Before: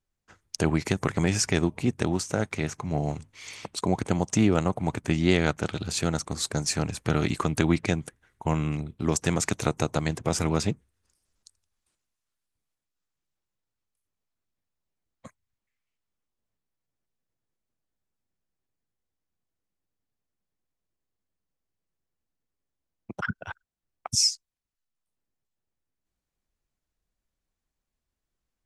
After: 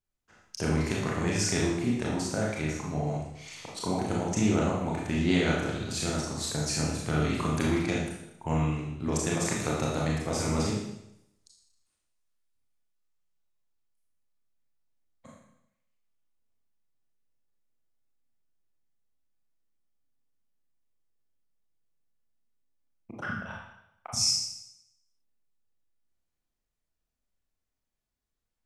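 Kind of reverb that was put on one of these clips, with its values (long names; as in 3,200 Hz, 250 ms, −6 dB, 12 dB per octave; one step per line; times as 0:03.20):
four-comb reverb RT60 0.81 s, combs from 26 ms, DRR −4 dB
level −7.5 dB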